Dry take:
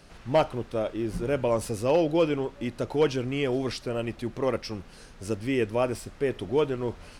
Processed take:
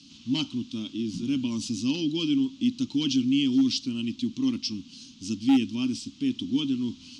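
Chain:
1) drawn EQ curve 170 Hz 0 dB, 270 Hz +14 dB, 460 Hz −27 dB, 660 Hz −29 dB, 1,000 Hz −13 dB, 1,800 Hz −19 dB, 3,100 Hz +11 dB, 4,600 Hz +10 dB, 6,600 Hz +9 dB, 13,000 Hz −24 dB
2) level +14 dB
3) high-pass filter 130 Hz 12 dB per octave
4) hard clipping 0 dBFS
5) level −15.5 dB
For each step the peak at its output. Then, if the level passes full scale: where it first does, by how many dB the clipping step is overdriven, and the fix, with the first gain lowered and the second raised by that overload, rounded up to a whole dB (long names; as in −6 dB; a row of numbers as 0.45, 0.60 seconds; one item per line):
−7.5, +6.5, +5.0, 0.0, −15.5 dBFS
step 2, 5.0 dB
step 2 +9 dB, step 5 −10.5 dB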